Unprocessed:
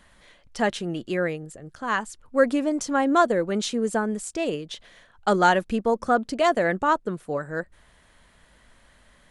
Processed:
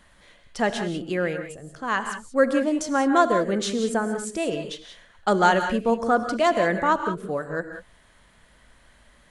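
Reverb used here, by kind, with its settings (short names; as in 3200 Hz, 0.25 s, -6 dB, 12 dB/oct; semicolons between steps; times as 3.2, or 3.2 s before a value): non-linear reverb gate 0.21 s rising, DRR 7 dB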